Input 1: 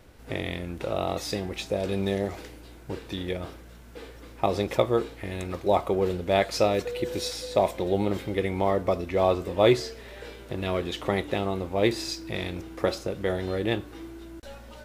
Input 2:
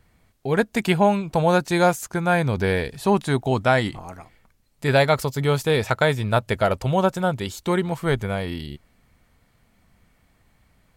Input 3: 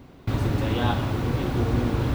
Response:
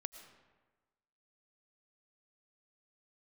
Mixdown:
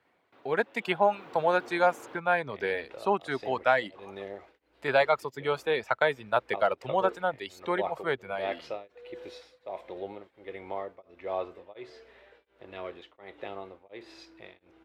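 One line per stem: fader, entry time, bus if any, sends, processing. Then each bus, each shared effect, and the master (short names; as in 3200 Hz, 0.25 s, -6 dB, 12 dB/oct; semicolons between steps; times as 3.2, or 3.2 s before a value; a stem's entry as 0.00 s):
-8.5 dB, 2.10 s, no send, high shelf 8500 Hz -6.5 dB; beating tremolo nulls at 1.4 Hz
-3.5 dB, 0.00 s, no send, HPF 120 Hz; reverb removal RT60 1.3 s
0.85 s -14.5 dB -> 1.23 s -2.5 dB, 0.05 s, no send, HPF 280 Hz 12 dB/oct; auto duck -11 dB, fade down 0.40 s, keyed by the second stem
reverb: off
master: three-band isolator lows -15 dB, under 360 Hz, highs -16 dB, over 3600 Hz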